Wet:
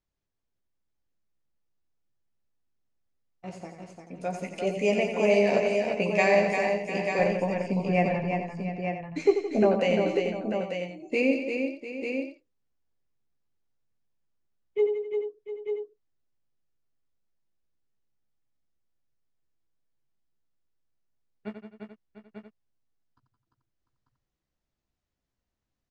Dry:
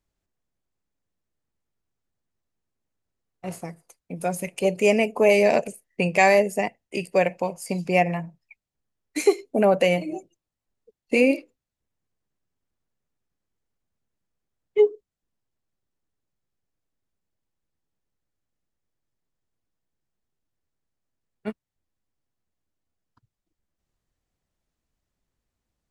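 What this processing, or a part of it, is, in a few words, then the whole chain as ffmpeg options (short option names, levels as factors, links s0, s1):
slapback doubling: -filter_complex "[0:a]lowpass=f=6700:w=0.5412,lowpass=f=6700:w=1.3066,asettb=1/sr,asplit=3[s0][s1][s2];[s0]atrim=end=7.194[s3];[s1]atrim=start=7.19:end=9.63,asetpts=PTS-STARTPTS,afade=t=in:d=0.004:c=qsin,afade=t=out:st=2.436:d=0.004:c=qsin,aemphasis=mode=reproduction:type=bsi[s4];[s2]atrim=start=9.626[s5];[s3][s4]acrossfade=d=0.004:c1=hsin:c2=qsin[s6];[s6][s5]acrossfade=d=0.004:c1=qsin:c2=hsin,asplit=3[s7][s8][s9];[s8]adelay=15,volume=0.447[s10];[s9]adelay=89,volume=0.422[s11];[s7][s10][s11]amix=inputs=3:normalize=0,aecho=1:1:168|177|347|697|893:0.266|0.15|0.531|0.224|0.447,volume=0.447"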